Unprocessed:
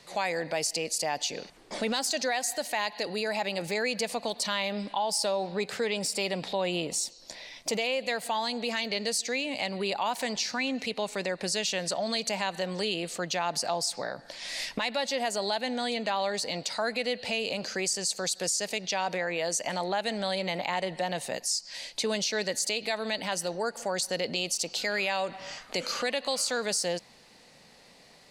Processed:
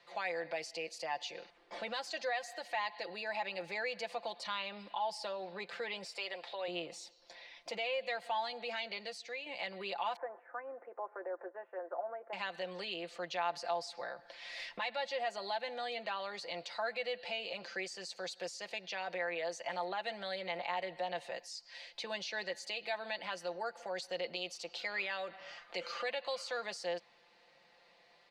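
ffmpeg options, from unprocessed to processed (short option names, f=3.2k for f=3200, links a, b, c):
-filter_complex "[0:a]asettb=1/sr,asplit=3[a][b][c];[a]atrim=end=6.044[d];[b]atrim=start=6.04:end=6.68,asetpts=PTS-STARTPTS,afade=t=in:d=0.004:c=qsin,afade=t=out:st=0.636:d=0.004:c=qsin,highpass=480[e];[c]atrim=start=6.676[f];[d][e]acrossfade=d=0.004:c1=hsin:c2=qsin[g];[g][f]acrossfade=d=0.004:c1=qsin:c2=hsin,asettb=1/sr,asplit=3[h][i][j];[h]atrim=end=10.164[k];[i]atrim=start=10.16:end=12.33,asetpts=PTS-STARTPTS,afade=t=in:d=0.004:c=qsin,afade=t=out:st=2.166:d=0.004:c=qsin,asuperpass=centerf=670:order=12:qfactor=0.52[l];[j]atrim=start=12.326[m];[k][l]acrossfade=d=0.004:c1=hsin:c2=qsin[n];[n][m]acrossfade=d=0.004:c1=qsin:c2=hsin,asplit=2[o][p];[o]atrim=end=9.46,asetpts=PTS-STARTPTS,afade=t=out:st=8.86:d=0.6:silence=0.501187[q];[p]atrim=start=9.46,asetpts=PTS-STARTPTS,afade=t=in:d=0.004:c=hsin:silence=0.501187[r];[q][r]concat=n=2:v=0:a=1,acrossover=split=410 4200:gain=0.2 1 0.0891[s][t][u];[s][t][u]amix=inputs=3:normalize=0,aecho=1:1:5.8:0.65,volume=-8dB"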